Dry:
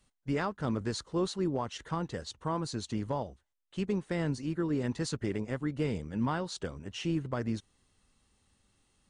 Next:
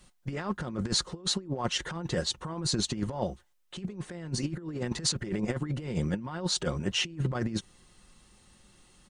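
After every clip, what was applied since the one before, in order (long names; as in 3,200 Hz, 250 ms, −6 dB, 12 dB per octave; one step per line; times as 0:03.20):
comb filter 5.6 ms, depth 44%
compressor whose output falls as the input rises −36 dBFS, ratio −0.5
level +5.5 dB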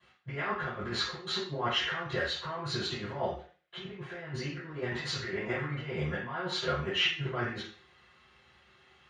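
resonant band-pass 2,000 Hz, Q 1.9
convolution reverb RT60 0.40 s, pre-delay 3 ms, DRR −16 dB
level −7 dB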